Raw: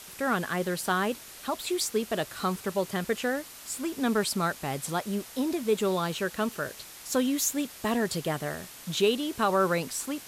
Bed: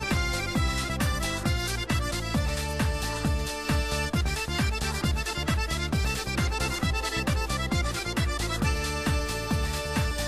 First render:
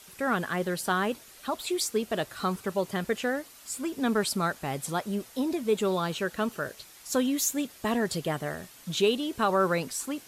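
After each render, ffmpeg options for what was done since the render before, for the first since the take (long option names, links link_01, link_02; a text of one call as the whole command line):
ffmpeg -i in.wav -af "afftdn=noise_reduction=7:noise_floor=-47" out.wav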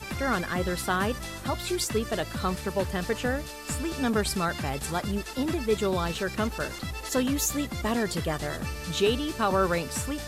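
ffmpeg -i in.wav -i bed.wav -filter_complex "[1:a]volume=-8dB[link_01];[0:a][link_01]amix=inputs=2:normalize=0" out.wav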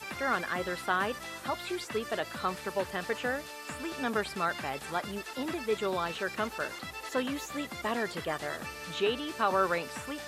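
ffmpeg -i in.wav -filter_complex "[0:a]highpass=frequency=610:poles=1,acrossover=split=3100[link_01][link_02];[link_02]acompressor=threshold=-47dB:ratio=4:attack=1:release=60[link_03];[link_01][link_03]amix=inputs=2:normalize=0" out.wav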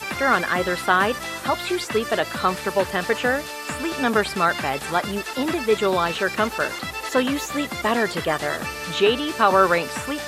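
ffmpeg -i in.wav -af "volume=11dB" out.wav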